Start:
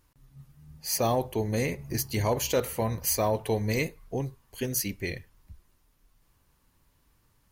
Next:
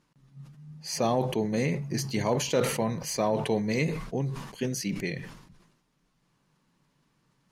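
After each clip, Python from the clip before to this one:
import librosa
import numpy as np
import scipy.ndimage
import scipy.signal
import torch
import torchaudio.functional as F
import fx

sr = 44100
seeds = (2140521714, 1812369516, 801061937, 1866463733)

y = scipy.signal.sosfilt(scipy.signal.butter(2, 6800.0, 'lowpass', fs=sr, output='sos'), x)
y = fx.low_shelf_res(y, sr, hz=110.0, db=-12.0, q=3.0)
y = fx.sustainer(y, sr, db_per_s=66.0)
y = y * librosa.db_to_amplitude(-1.0)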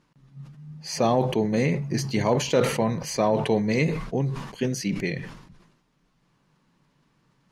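y = fx.high_shelf(x, sr, hz=7500.0, db=-10.0)
y = y * librosa.db_to_amplitude(4.5)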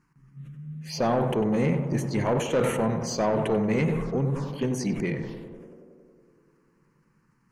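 y = fx.env_phaser(x, sr, low_hz=600.0, high_hz=4800.0, full_db=-23.0)
y = 10.0 ** (-17.0 / 20.0) * np.tanh(y / 10.0 ** (-17.0 / 20.0))
y = fx.echo_tape(y, sr, ms=95, feedback_pct=89, wet_db=-5.0, lp_hz=1300.0, drive_db=21.0, wow_cents=40)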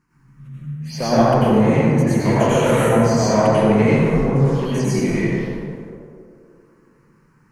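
y = fx.rev_plate(x, sr, seeds[0], rt60_s=1.7, hf_ratio=0.6, predelay_ms=80, drr_db=-9.5)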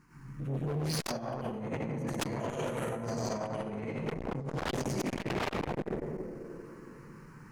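y = fx.over_compress(x, sr, threshold_db=-23.0, ratio=-0.5)
y = 10.0 ** (-21.5 / 20.0) * (np.abs((y / 10.0 ** (-21.5 / 20.0) + 3.0) % 4.0 - 2.0) - 1.0)
y = fx.transformer_sat(y, sr, knee_hz=290.0)
y = y * librosa.db_to_amplitude(-2.5)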